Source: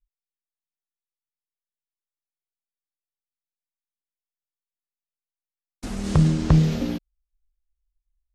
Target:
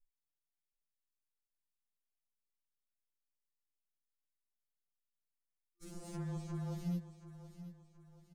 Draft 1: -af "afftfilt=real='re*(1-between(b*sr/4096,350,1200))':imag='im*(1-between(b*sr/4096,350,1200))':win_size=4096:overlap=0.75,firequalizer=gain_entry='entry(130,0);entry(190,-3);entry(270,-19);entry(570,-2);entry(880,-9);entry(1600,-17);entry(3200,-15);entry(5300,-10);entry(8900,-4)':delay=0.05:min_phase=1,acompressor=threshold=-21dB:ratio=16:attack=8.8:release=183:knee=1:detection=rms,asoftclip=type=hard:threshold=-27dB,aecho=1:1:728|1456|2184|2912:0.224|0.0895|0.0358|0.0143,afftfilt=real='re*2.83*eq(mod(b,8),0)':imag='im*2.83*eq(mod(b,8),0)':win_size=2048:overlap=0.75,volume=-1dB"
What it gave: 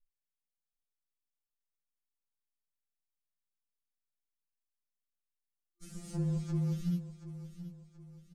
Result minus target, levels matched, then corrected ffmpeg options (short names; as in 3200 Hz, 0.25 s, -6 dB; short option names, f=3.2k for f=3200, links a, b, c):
hard clip: distortion -5 dB
-af "afftfilt=real='re*(1-between(b*sr/4096,350,1200))':imag='im*(1-between(b*sr/4096,350,1200))':win_size=4096:overlap=0.75,firequalizer=gain_entry='entry(130,0);entry(190,-3);entry(270,-19);entry(570,-2);entry(880,-9);entry(1600,-17);entry(3200,-15);entry(5300,-10);entry(8900,-4)':delay=0.05:min_phase=1,acompressor=threshold=-21dB:ratio=16:attack=8.8:release=183:knee=1:detection=rms,asoftclip=type=hard:threshold=-36.5dB,aecho=1:1:728|1456|2184|2912:0.224|0.0895|0.0358|0.0143,afftfilt=real='re*2.83*eq(mod(b,8),0)':imag='im*2.83*eq(mod(b,8),0)':win_size=2048:overlap=0.75,volume=-1dB"